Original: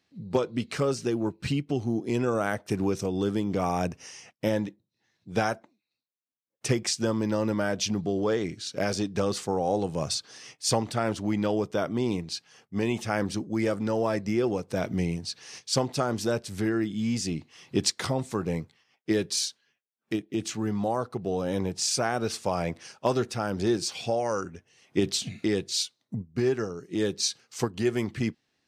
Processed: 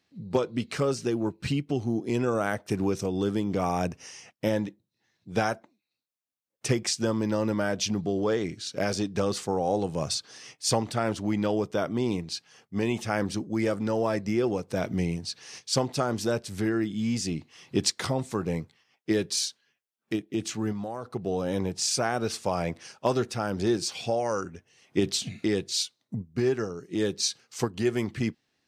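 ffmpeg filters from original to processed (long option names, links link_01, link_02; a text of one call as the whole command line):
ffmpeg -i in.wav -filter_complex "[0:a]asettb=1/sr,asplit=3[link_01][link_02][link_03];[link_01]atrim=end=20.724[link_04];[link_02]atrim=start=20.72:end=21.14,asetpts=PTS-STARTPTS,afade=type=in:duration=0.004:curve=qsin,afade=type=out:start_time=0.416:duration=0.004:curve=qsin,acompressor=threshold=-30dB:ratio=5:attack=3.2:release=140:knee=1:detection=peak[link_05];[link_03]atrim=start=21.136[link_06];[link_04][link_05]acrossfade=duration=0.004:curve1=hsin:curve2=qsin[link_07];[link_07][link_06]acrossfade=duration=0.004:curve1=qsin:curve2=hsin" out.wav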